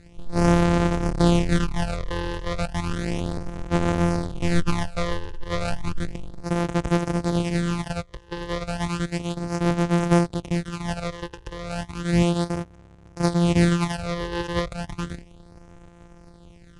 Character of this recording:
a buzz of ramps at a fixed pitch in blocks of 256 samples
phaser sweep stages 12, 0.33 Hz, lowest notch 210–3,900 Hz
IMA ADPCM

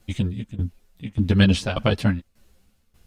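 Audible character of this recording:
tremolo saw down 1.7 Hz, depth 85%
a shimmering, thickened sound

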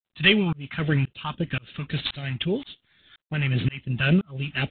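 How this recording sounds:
phaser sweep stages 2, 3.7 Hz, lowest notch 490–1,100 Hz
tremolo saw up 1.9 Hz, depth 100%
G.726

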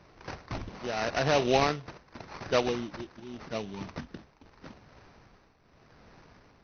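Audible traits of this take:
tremolo triangle 0.85 Hz, depth 75%
aliases and images of a low sample rate 3,300 Hz, jitter 20%
AC-3

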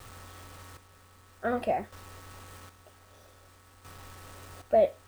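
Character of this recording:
a quantiser's noise floor 10 bits, dither none
chopped level 0.52 Hz, depth 65%, duty 40%

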